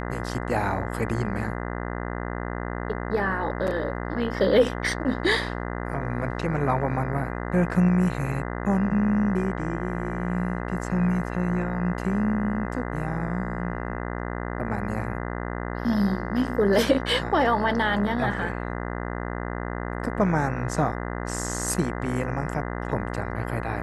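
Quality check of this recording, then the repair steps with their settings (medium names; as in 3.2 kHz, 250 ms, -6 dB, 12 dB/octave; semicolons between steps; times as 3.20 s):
buzz 60 Hz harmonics 34 -31 dBFS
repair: de-hum 60 Hz, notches 34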